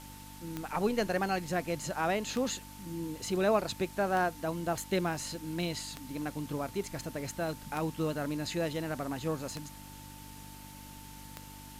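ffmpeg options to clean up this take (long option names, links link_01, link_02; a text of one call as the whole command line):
ffmpeg -i in.wav -af "adeclick=threshold=4,bandreject=frequency=49.4:width_type=h:width=4,bandreject=frequency=98.8:width_type=h:width=4,bandreject=frequency=148.2:width_type=h:width=4,bandreject=frequency=197.6:width_type=h:width=4,bandreject=frequency=247:width_type=h:width=4,bandreject=frequency=296.4:width_type=h:width=4,bandreject=frequency=890:width=30,afwtdn=0.0025" out.wav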